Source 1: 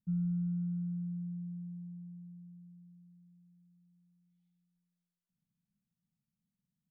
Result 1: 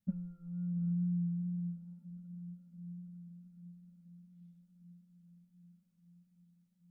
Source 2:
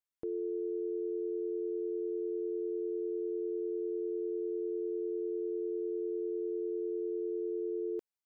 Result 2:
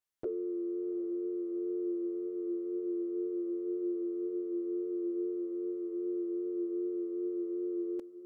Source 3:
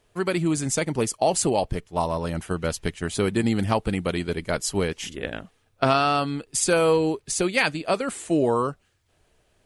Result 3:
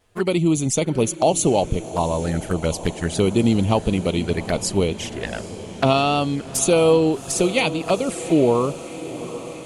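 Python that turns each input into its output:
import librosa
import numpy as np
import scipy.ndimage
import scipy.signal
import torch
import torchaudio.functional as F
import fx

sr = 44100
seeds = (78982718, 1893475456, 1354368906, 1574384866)

y = fx.wow_flutter(x, sr, seeds[0], rate_hz=2.1, depth_cents=21.0)
y = fx.env_flanger(y, sr, rest_ms=10.9, full_db=-22.0)
y = fx.echo_diffused(y, sr, ms=769, feedback_pct=70, wet_db=-15.0)
y = F.gain(torch.from_numpy(y), 5.5).numpy()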